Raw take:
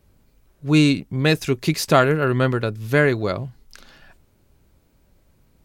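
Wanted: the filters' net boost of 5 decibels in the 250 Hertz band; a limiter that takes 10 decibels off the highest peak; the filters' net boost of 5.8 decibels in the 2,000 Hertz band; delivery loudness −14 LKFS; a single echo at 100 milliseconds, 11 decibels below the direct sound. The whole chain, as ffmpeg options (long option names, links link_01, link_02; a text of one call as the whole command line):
ffmpeg -i in.wav -af "equalizer=frequency=250:width_type=o:gain=6.5,equalizer=frequency=2000:width_type=o:gain=7.5,alimiter=limit=-9.5dB:level=0:latency=1,aecho=1:1:100:0.282,volume=6.5dB" out.wav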